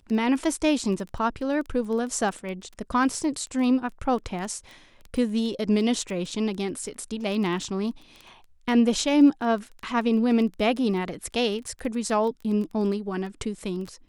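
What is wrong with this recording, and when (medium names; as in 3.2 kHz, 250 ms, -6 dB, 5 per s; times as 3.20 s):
crackle 13 per s -32 dBFS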